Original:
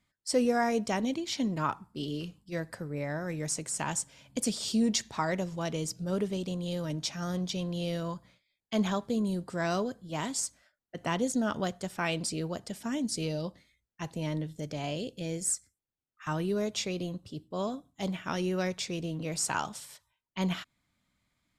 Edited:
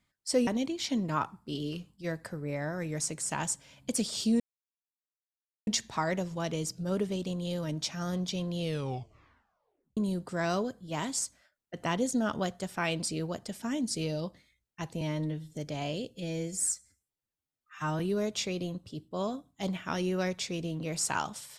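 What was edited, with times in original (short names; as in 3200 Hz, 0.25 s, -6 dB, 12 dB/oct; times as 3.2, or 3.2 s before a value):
0.47–0.95 cut
4.88 insert silence 1.27 s
7.81 tape stop 1.37 s
14.22–14.59 stretch 1.5×
15.13–16.39 stretch 1.5×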